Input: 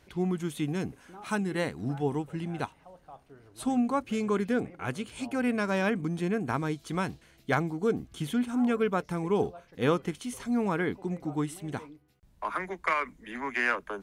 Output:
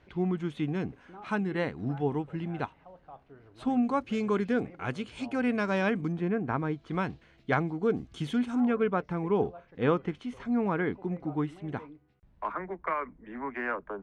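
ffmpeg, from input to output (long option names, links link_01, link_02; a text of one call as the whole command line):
ffmpeg -i in.wav -af "asetnsamples=nb_out_samples=441:pad=0,asendcmd='3.83 lowpass f 4900;6.12 lowpass f 2000;6.91 lowpass f 3200;7.94 lowpass f 5700;8.6 lowpass f 2400;12.52 lowpass f 1200',lowpass=3000" out.wav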